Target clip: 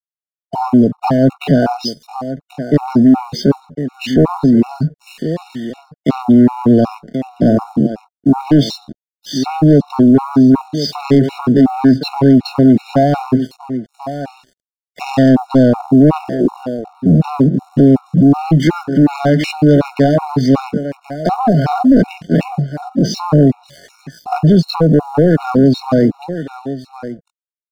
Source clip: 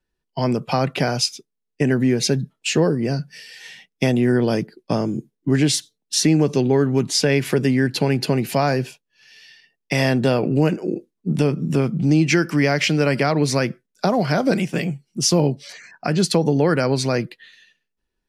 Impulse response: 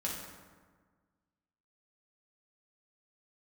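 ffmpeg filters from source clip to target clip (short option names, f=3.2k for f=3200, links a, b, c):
-af "highpass=140,equalizer=f=160:t=q:w=4:g=5,equalizer=f=260:t=q:w=4:g=8,equalizer=f=760:t=q:w=4:g=6,lowpass=f=3.9k:w=0.5412,lowpass=f=3.9k:w=1.3066,aecho=1:1:700:0.178,aeval=exprs='sgn(val(0))*max(abs(val(0))-0.00562,0)':c=same,dynaudnorm=f=700:g=9:m=3dB,asoftclip=type=tanh:threshold=-14dB,equalizer=f=2.3k:w=1.4:g=-12,atempo=0.66,alimiter=level_in=14.5dB:limit=-1dB:release=50:level=0:latency=1,afftfilt=real='re*gt(sin(2*PI*2.7*pts/sr)*(1-2*mod(floor(b*sr/1024/730),2)),0)':imag='im*gt(sin(2*PI*2.7*pts/sr)*(1-2*mod(floor(b*sr/1024/730),2)),0)':win_size=1024:overlap=0.75,volume=-2.5dB"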